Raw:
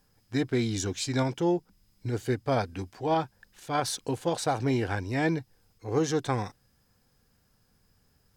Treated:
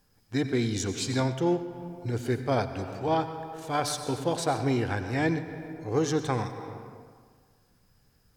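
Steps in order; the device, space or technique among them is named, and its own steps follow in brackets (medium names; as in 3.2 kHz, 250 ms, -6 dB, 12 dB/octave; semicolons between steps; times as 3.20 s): compressed reverb return (on a send at -3.5 dB: reverberation RT60 1.7 s, pre-delay 83 ms + compression, threshold -30 dBFS, peak gain reduction 9.5 dB)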